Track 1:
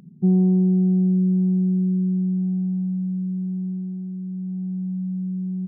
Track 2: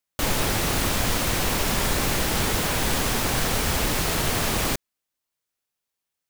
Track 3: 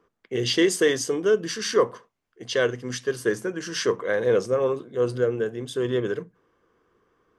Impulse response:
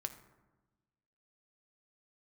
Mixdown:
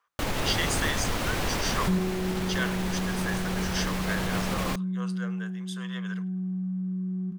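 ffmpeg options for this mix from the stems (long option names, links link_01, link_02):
-filter_complex "[0:a]adelay=1650,volume=-0.5dB,asplit=2[link_01][link_02];[link_02]volume=-6.5dB[link_03];[1:a]volume=-2.5dB[link_04];[2:a]highpass=frequency=860:width=0.5412,highpass=frequency=860:width=1.3066,volume=-3dB,asplit=2[link_05][link_06];[link_06]volume=-23.5dB[link_07];[link_01][link_04]amix=inputs=2:normalize=0,highshelf=frequency=5100:gain=-10,alimiter=limit=-17.5dB:level=0:latency=1:release=86,volume=0dB[link_08];[link_03][link_07]amix=inputs=2:normalize=0,aecho=0:1:105|210|315|420:1|0.3|0.09|0.027[link_09];[link_05][link_08][link_09]amix=inputs=3:normalize=0"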